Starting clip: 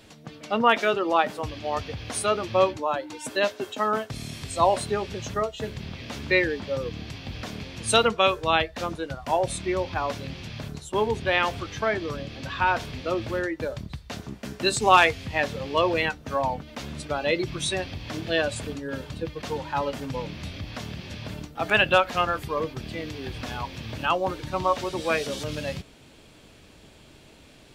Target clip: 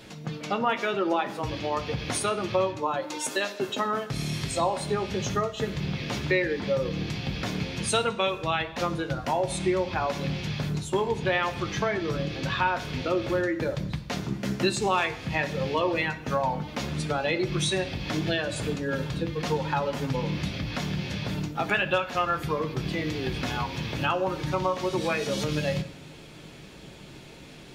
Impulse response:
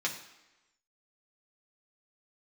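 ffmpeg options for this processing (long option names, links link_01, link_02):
-filter_complex "[0:a]asettb=1/sr,asplit=3[link_01][link_02][link_03];[link_01]atrim=end=3.024[link_04];[link_02]atrim=start=3.02:end=3.59,asetpts=PTS-STARTPTS,afade=type=in:duration=0.004:curve=qsin,afade=type=out:start_time=0.566:duration=0.004:curve=qsin,bass=frequency=250:gain=-12,treble=frequency=4000:gain=5[link_05];[link_03]atrim=start=3.586[link_06];[link_04][link_05]acrossfade=duration=0.004:curve1=hsin:curve2=qsin[link_07];[link_07][link_06]acrossfade=duration=0.004:curve1=qsin:curve2=hsin,acompressor=threshold=-30dB:ratio=3,asplit=2[link_08][link_09];[1:a]atrim=start_sample=2205,lowshelf=frequency=340:gain=9[link_10];[link_09][link_10]afir=irnorm=-1:irlink=0,volume=-5.5dB[link_11];[link_08][link_11]amix=inputs=2:normalize=0"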